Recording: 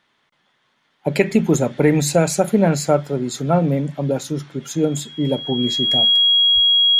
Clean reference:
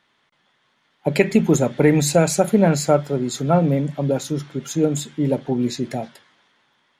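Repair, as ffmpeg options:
-filter_complex "[0:a]bandreject=f=3.3k:w=30,asplit=3[a][b][c];[a]afade=t=out:st=6.54:d=0.02[d];[b]highpass=f=140:w=0.5412,highpass=f=140:w=1.3066,afade=t=in:st=6.54:d=0.02,afade=t=out:st=6.66:d=0.02[e];[c]afade=t=in:st=6.66:d=0.02[f];[d][e][f]amix=inputs=3:normalize=0"

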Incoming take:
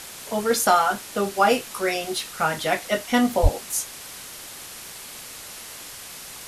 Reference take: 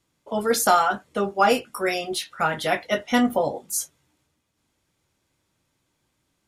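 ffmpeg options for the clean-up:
-filter_complex "[0:a]asplit=3[a][b][c];[a]afade=t=out:st=3.42:d=0.02[d];[b]highpass=f=140:w=0.5412,highpass=f=140:w=1.3066,afade=t=in:st=3.42:d=0.02,afade=t=out:st=3.54:d=0.02[e];[c]afade=t=in:st=3.54:d=0.02[f];[d][e][f]amix=inputs=3:normalize=0,afwtdn=0.014"

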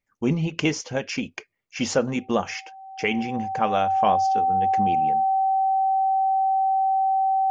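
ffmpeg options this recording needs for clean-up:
-af "bandreject=f=770:w=30"

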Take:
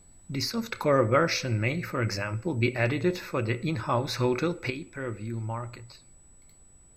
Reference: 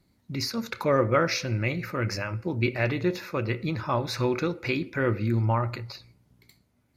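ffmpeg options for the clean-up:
-af "bandreject=f=7.9k:w=30,agate=range=-21dB:threshold=-46dB,asetnsamples=n=441:p=0,asendcmd='4.7 volume volume 9dB',volume=0dB"

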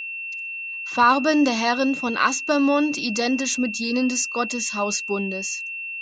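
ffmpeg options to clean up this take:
-af "bandreject=f=2.7k:w=30"

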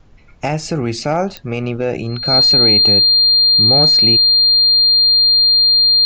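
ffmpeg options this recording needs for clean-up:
-af "adeclick=t=4,bandreject=f=4.2k:w=30,agate=range=-21dB:threshold=-21dB"

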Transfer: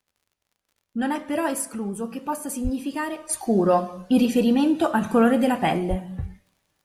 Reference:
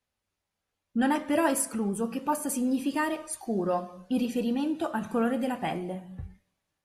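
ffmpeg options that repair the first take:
-filter_complex "[0:a]adeclick=t=4,asplit=3[a][b][c];[a]afade=t=out:st=2.63:d=0.02[d];[b]highpass=f=140:w=0.5412,highpass=f=140:w=1.3066,afade=t=in:st=2.63:d=0.02,afade=t=out:st=2.75:d=0.02[e];[c]afade=t=in:st=2.75:d=0.02[f];[d][e][f]amix=inputs=3:normalize=0,asplit=3[g][h][i];[g]afade=t=out:st=5.89:d=0.02[j];[h]highpass=f=140:w=0.5412,highpass=f=140:w=1.3066,afade=t=in:st=5.89:d=0.02,afade=t=out:st=6.01:d=0.02[k];[i]afade=t=in:st=6.01:d=0.02[l];[j][k][l]amix=inputs=3:normalize=0,asetnsamples=n=441:p=0,asendcmd='3.29 volume volume -9dB',volume=0dB"

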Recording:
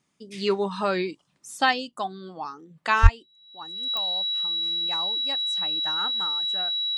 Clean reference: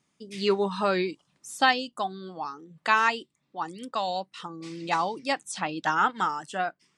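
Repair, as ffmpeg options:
-filter_complex "[0:a]adeclick=t=4,bandreject=f=3.9k:w=30,asplit=3[a][b][c];[a]afade=t=out:st=3.02:d=0.02[d];[b]highpass=f=140:w=0.5412,highpass=f=140:w=1.3066,afade=t=in:st=3.02:d=0.02,afade=t=out:st=3.14:d=0.02[e];[c]afade=t=in:st=3.14:d=0.02[f];[d][e][f]amix=inputs=3:normalize=0,asetnsamples=n=441:p=0,asendcmd='3.07 volume volume 10dB',volume=0dB"

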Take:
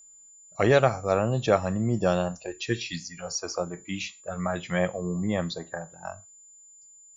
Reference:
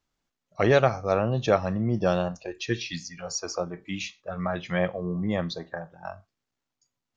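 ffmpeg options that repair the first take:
-af "bandreject=f=7.1k:w=30"

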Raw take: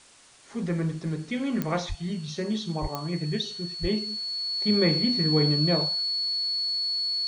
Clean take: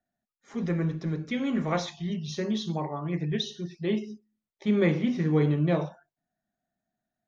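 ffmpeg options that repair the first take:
-filter_complex "[0:a]adeclick=t=4,bandreject=f=4.4k:w=30,asplit=3[a][b][c];[a]afade=t=out:st=1.88:d=0.02[d];[b]highpass=f=140:w=0.5412,highpass=f=140:w=1.3066,afade=t=in:st=1.88:d=0.02,afade=t=out:st=2:d=0.02[e];[c]afade=t=in:st=2:d=0.02[f];[d][e][f]amix=inputs=3:normalize=0,asplit=3[g][h][i];[g]afade=t=out:st=2.81:d=0.02[j];[h]highpass=f=140:w=0.5412,highpass=f=140:w=1.3066,afade=t=in:st=2.81:d=0.02,afade=t=out:st=2.93:d=0.02[k];[i]afade=t=in:st=2.93:d=0.02[l];[j][k][l]amix=inputs=3:normalize=0,asplit=3[m][n][o];[m]afade=t=out:st=3.81:d=0.02[p];[n]highpass=f=140:w=0.5412,highpass=f=140:w=1.3066,afade=t=in:st=3.81:d=0.02,afade=t=out:st=3.93:d=0.02[q];[o]afade=t=in:st=3.93:d=0.02[r];[p][q][r]amix=inputs=3:normalize=0,afftdn=nr=30:nf=-39"

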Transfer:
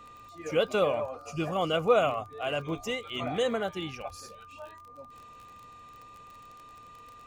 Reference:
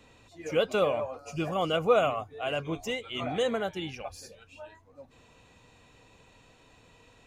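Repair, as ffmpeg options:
-af "adeclick=t=4,bandreject=f=1.2k:w=30"

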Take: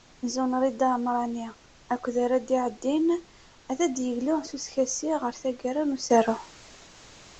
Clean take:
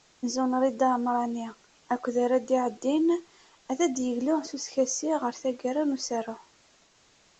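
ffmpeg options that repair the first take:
-af "agate=range=-21dB:threshold=-45dB,asetnsamples=n=441:p=0,asendcmd='6.1 volume volume -10.5dB',volume=0dB"

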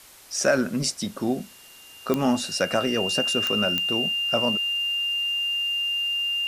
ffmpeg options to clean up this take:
-af "adeclick=t=4,bandreject=f=2.8k:w=30,afwtdn=0.004"

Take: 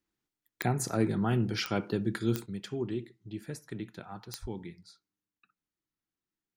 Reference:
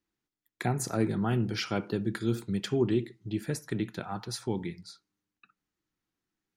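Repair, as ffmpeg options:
-filter_complex "[0:a]adeclick=t=4,asplit=3[a][b][c];[a]afade=t=out:st=4.41:d=0.02[d];[b]highpass=f=140:w=0.5412,highpass=f=140:w=1.3066,afade=t=in:st=4.41:d=0.02,afade=t=out:st=4.53:d=0.02[e];[c]afade=t=in:st=4.53:d=0.02[f];[d][e][f]amix=inputs=3:normalize=0,asetnsamples=n=441:p=0,asendcmd='2.46 volume volume 7.5dB',volume=0dB"

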